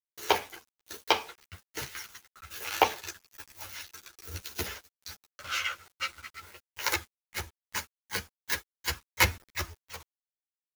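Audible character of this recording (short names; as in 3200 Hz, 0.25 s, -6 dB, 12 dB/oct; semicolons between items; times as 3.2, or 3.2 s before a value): a quantiser's noise floor 8-bit, dither none; tremolo saw down 1.2 Hz, depth 55%; a shimmering, thickened sound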